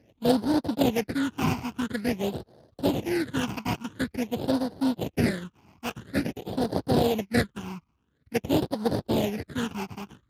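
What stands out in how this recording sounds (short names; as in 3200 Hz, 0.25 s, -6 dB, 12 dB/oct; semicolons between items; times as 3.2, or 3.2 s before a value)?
aliases and images of a low sample rate 1200 Hz, jitter 20%; phasing stages 8, 0.48 Hz, lowest notch 510–2400 Hz; Speex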